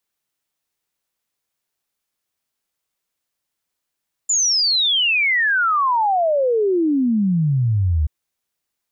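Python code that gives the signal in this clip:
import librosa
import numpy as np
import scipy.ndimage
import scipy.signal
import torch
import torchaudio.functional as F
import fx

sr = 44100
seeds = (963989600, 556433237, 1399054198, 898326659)

y = fx.ess(sr, length_s=3.78, from_hz=7200.0, to_hz=72.0, level_db=-14.5)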